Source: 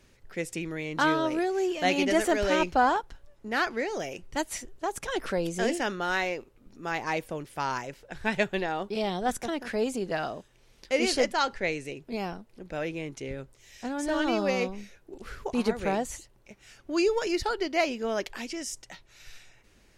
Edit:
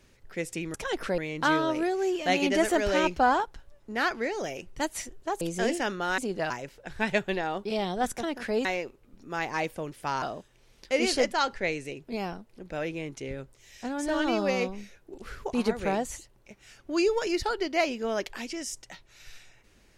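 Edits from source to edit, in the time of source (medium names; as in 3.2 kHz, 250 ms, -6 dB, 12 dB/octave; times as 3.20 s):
4.97–5.41 s: move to 0.74 s
6.18–7.75 s: swap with 9.90–10.22 s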